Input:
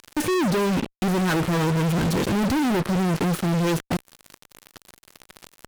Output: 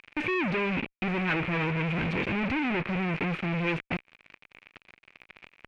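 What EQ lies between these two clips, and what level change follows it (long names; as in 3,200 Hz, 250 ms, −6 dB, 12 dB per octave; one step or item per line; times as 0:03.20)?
low-pass with resonance 2,400 Hz, resonance Q 6
−8.0 dB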